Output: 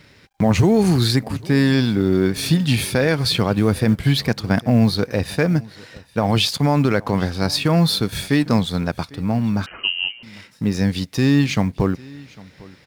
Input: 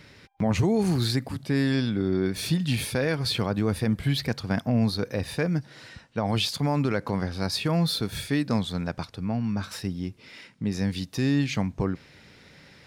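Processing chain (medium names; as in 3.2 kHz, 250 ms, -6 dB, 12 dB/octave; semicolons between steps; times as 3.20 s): companding laws mixed up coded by A; delay 801 ms -22.5 dB; 9.66–10.23 s: frequency inversion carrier 3 kHz; trim +8.5 dB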